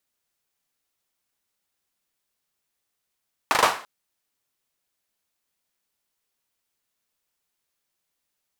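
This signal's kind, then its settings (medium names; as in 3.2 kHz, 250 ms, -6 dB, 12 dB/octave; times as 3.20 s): hand clap length 0.34 s, bursts 4, apart 39 ms, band 940 Hz, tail 0.40 s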